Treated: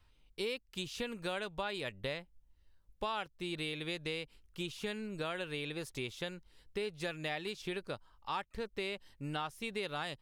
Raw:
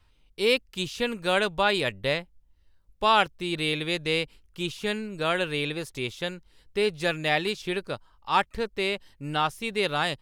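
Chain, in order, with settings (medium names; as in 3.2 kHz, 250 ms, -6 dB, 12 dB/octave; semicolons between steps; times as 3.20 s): compression 5:1, threshold -31 dBFS, peak gain reduction 14 dB; trim -4.5 dB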